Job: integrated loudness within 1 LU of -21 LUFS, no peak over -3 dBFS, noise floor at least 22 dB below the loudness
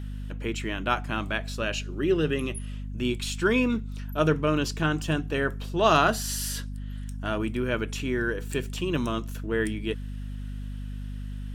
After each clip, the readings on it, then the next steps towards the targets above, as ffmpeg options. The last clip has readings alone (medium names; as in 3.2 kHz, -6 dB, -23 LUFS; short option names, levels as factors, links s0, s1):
hum 50 Hz; highest harmonic 250 Hz; hum level -32 dBFS; loudness -28.0 LUFS; peak level -6.5 dBFS; loudness target -21.0 LUFS
-> -af "bandreject=f=50:t=h:w=4,bandreject=f=100:t=h:w=4,bandreject=f=150:t=h:w=4,bandreject=f=200:t=h:w=4,bandreject=f=250:t=h:w=4"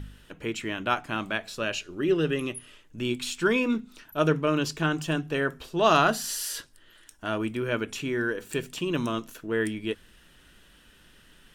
hum not found; loudness -28.0 LUFS; peak level -6.5 dBFS; loudness target -21.0 LUFS
-> -af "volume=2.24,alimiter=limit=0.708:level=0:latency=1"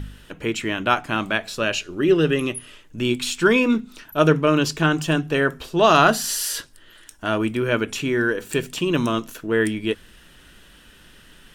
loudness -21.5 LUFS; peak level -3.0 dBFS; noise floor -50 dBFS